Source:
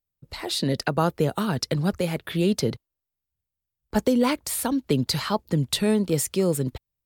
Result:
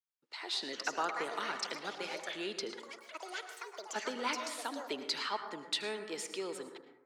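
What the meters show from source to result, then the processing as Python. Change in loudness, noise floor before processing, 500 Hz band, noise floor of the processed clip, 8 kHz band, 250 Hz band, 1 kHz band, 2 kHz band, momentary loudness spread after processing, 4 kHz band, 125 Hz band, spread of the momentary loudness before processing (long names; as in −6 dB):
−13.5 dB, below −85 dBFS, −15.0 dB, −66 dBFS, −13.0 dB, −22.0 dB, −7.5 dB, −4.5 dB, 10 LU, −7.0 dB, −36.0 dB, 6 LU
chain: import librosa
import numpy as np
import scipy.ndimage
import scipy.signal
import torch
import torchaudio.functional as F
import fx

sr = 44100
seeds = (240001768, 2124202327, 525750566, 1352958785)

p1 = scipy.signal.sosfilt(scipy.signal.butter(4, 410.0, 'highpass', fs=sr, output='sos'), x)
p2 = fx.peak_eq(p1, sr, hz=540.0, db=-14.5, octaves=0.85)
p3 = fx.notch(p2, sr, hz=1100.0, q=24.0)
p4 = p3 + fx.echo_single(p3, sr, ms=78, db=-18.5, dry=0)
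p5 = fx.echo_pitch(p4, sr, ms=509, semitones=7, count=3, db_per_echo=-6.0)
p6 = fx.air_absorb(p5, sr, metres=100.0)
p7 = fx.rev_plate(p6, sr, seeds[0], rt60_s=0.93, hf_ratio=0.25, predelay_ms=95, drr_db=7.5)
y = p7 * librosa.db_to_amplitude(-4.5)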